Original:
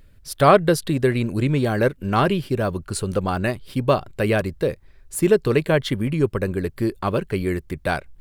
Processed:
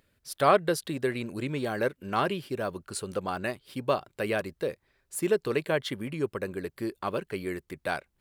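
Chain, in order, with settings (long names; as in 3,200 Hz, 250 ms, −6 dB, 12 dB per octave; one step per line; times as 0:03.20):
high-pass filter 340 Hz 6 dB per octave
level −6.5 dB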